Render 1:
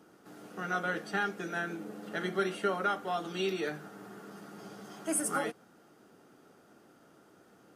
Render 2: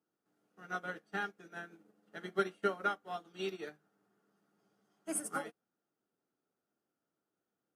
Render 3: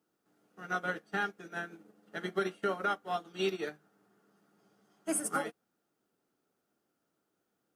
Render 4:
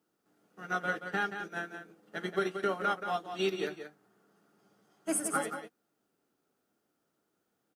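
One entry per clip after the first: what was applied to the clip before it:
upward expander 2.5:1, over -45 dBFS
limiter -28.5 dBFS, peak gain reduction 9.5 dB; gain +7 dB
echo 0.178 s -8.5 dB; gain +1 dB

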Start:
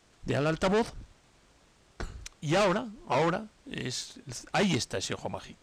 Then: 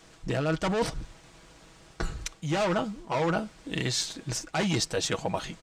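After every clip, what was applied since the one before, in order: comb 6.2 ms, depth 47%; reverse; compressor 6:1, threshold -33 dBFS, peak gain reduction 11.5 dB; reverse; gain +8 dB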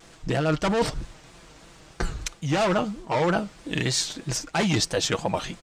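vibrato 3.1 Hz 96 cents; gain +4 dB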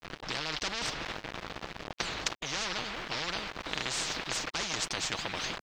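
sample gate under -43 dBFS; air absorption 230 m; spectral compressor 10:1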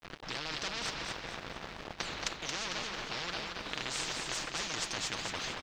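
feedback echo 0.225 s, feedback 41%, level -5 dB; gain -4 dB

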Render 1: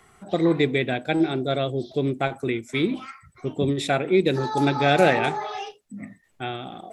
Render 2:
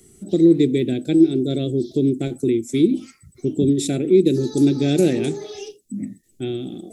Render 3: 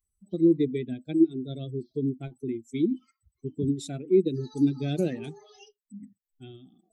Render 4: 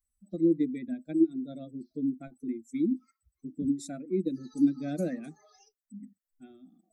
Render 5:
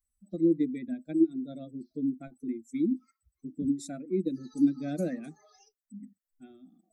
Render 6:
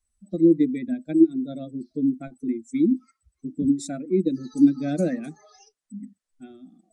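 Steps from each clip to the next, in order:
EQ curve 130 Hz 0 dB, 340 Hz +7 dB, 950 Hz -28 dB, 7100 Hz +6 dB; in parallel at -1 dB: compressor, threshold -25 dBFS, peak gain reduction 14.5 dB
per-bin expansion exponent 2; high shelf 5400 Hz -11.5 dB; gain -4.5 dB
fixed phaser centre 610 Hz, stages 8
nothing audible
downsampling 22050 Hz; gain +7.5 dB

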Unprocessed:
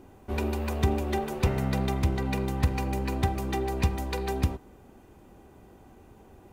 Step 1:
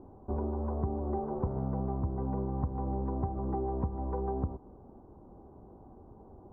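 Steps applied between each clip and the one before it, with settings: steep low-pass 1100 Hz 36 dB/oct; compressor 5:1, threshold -29 dBFS, peak gain reduction 10.5 dB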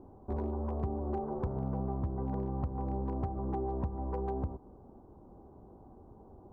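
hard clip -24.5 dBFS, distortion -22 dB; gain -1.5 dB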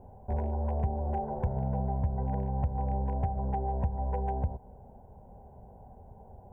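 fixed phaser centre 1200 Hz, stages 6; gain +6.5 dB

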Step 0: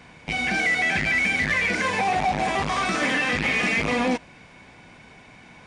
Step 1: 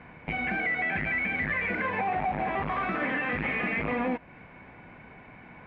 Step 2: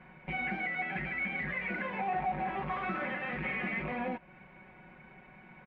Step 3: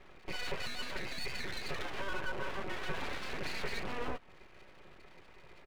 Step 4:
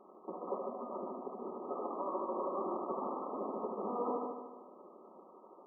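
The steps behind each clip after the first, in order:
LPF 2300 Hz 24 dB/oct; compressor 2:1, threshold -30 dBFS, peak gain reduction 6.5 dB
comb 5.4 ms, depth 82%; gain -8 dB
small resonant body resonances 210/330 Hz, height 6 dB, ringing for 25 ms; full-wave rectifier; gain -2.5 dB
brick-wall FIR band-pass 190–1300 Hz; multi-head echo 75 ms, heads first and second, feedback 53%, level -6.5 dB; gain +3 dB

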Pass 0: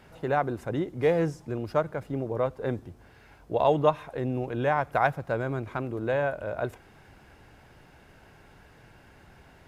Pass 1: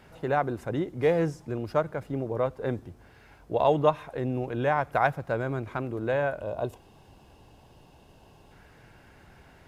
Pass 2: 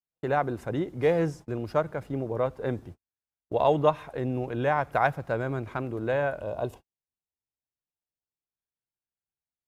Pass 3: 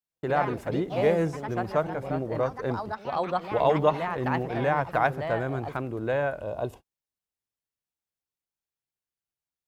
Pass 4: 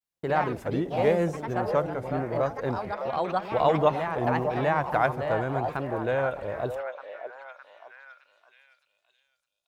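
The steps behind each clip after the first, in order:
spectral gain 6.41–8.52, 1200–2500 Hz -11 dB
gate -42 dBFS, range -51 dB
echoes that change speed 96 ms, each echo +3 st, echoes 3, each echo -6 dB
vibrato 0.91 Hz 95 cents; delay with a stepping band-pass 0.612 s, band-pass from 660 Hz, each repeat 0.7 oct, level -6.5 dB

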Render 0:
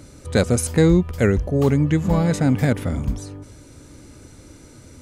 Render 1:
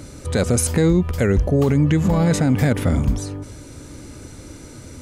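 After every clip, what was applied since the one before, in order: limiter -15 dBFS, peak gain reduction 10 dB; gain +6 dB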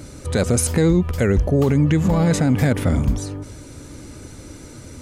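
vibrato 13 Hz 32 cents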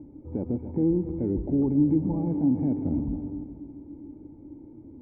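vocal tract filter u; on a send: multi-head echo 0.137 s, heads first and second, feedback 52%, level -13.5 dB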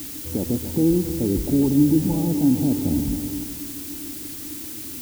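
added noise blue -40 dBFS; gain +5 dB

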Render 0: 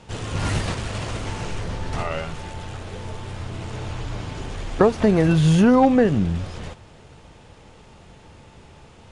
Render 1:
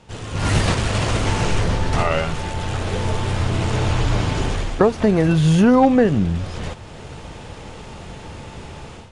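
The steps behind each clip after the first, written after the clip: AGC gain up to 14 dB; gain -2.5 dB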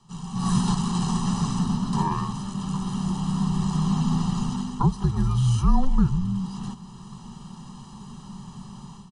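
frequency shift -280 Hz; fixed phaser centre 420 Hz, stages 8; comb 1 ms, depth 85%; gain -6 dB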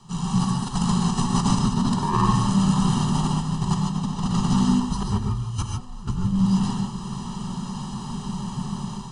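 negative-ratio compressor -27 dBFS, ratio -0.5; thinning echo 0.526 s, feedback 79%, high-pass 160 Hz, level -20 dB; non-linear reverb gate 0.17 s rising, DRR 1.5 dB; gain +3.5 dB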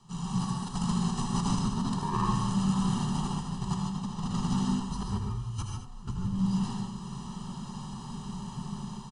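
echo 79 ms -8.5 dB; gain -8.5 dB

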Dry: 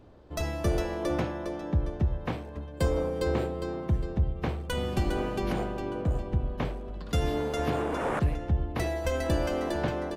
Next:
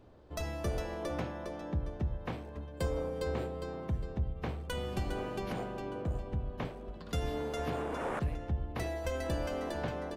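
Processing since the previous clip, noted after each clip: notches 50/100/150/200/250/300/350 Hz; in parallel at -2.5 dB: compressor, threshold -34 dBFS, peak gain reduction 12.5 dB; on the sum: gain -8.5 dB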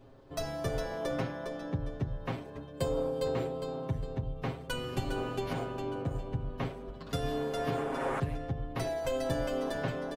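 comb 7.4 ms, depth 96%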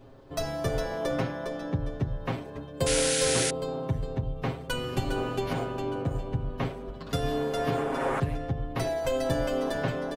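painted sound noise, 2.86–3.51, 1300–11000 Hz -33 dBFS; gain +4.5 dB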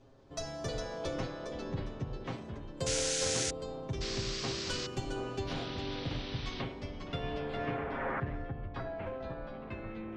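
ending faded out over 1.91 s; low-pass sweep 6500 Hz -> 1300 Hz, 5.17–9.06; echoes that change speed 0.187 s, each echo -5 st, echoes 2, each echo -6 dB; gain -9 dB

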